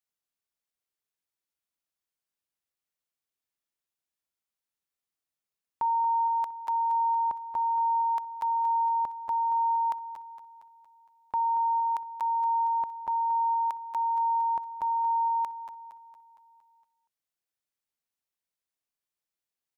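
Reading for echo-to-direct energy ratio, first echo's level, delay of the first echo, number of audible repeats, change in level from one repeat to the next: −10.0 dB, −11.5 dB, 231 ms, 5, −5.5 dB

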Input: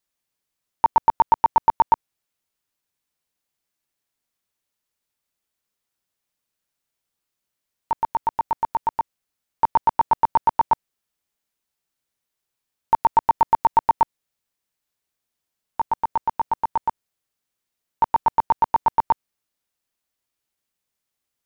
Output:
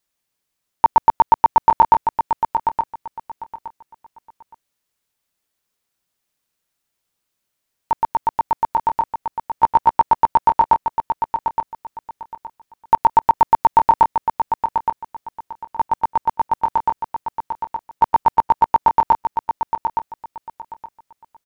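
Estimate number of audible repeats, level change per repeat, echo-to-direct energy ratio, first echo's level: 3, −13.0 dB, −7.0 dB, −7.0 dB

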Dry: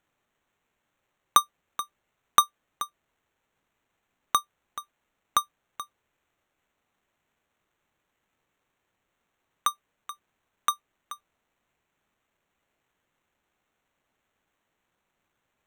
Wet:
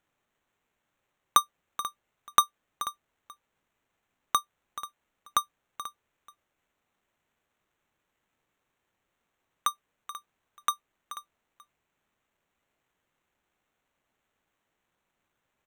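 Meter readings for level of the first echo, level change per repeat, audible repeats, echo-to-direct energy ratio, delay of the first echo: −15.0 dB, repeats not evenly spaced, 1, −15.0 dB, 487 ms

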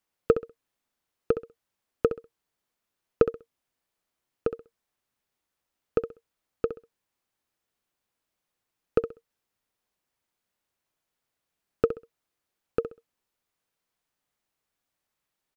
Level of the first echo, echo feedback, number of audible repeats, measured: −11.0 dB, 23%, 2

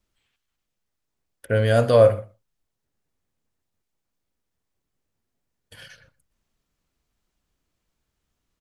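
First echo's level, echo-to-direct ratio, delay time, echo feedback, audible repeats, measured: −22.5 dB, −22.5 dB, 123 ms, repeats not evenly spaced, 1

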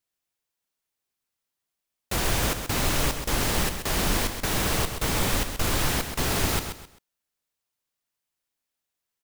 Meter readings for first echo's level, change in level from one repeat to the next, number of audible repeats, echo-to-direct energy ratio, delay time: −8.0 dB, −10.5 dB, 3, −7.5 dB, 131 ms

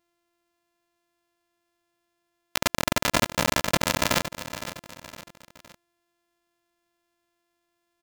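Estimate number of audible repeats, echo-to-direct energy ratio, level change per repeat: 3, −11.0 dB, −7.5 dB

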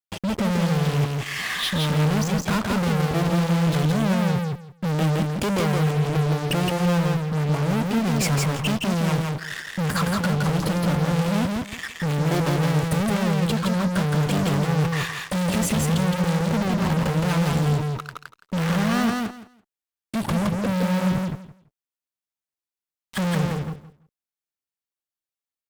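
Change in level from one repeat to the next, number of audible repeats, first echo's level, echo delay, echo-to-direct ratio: −15.0 dB, 3, −3.0 dB, 167 ms, −3.0 dB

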